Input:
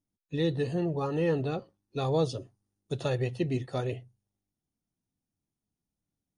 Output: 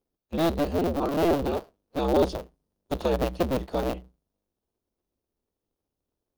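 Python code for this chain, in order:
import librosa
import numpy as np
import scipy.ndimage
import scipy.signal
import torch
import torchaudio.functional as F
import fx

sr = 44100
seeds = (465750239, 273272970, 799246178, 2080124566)

y = fx.cycle_switch(x, sr, every=2, mode='inverted')
y = fx.graphic_eq(y, sr, hz=(125, 500, 2000, 8000), db=(-6, 4, -6, -8))
y = F.gain(torch.from_numpy(y), 3.5).numpy()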